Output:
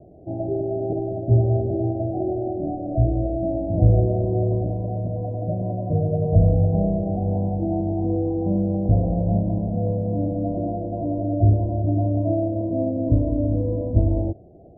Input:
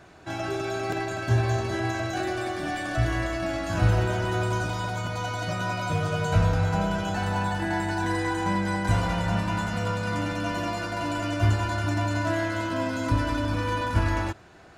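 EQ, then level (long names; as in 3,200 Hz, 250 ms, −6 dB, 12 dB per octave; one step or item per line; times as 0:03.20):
Butterworth low-pass 700 Hz 72 dB per octave
+6.0 dB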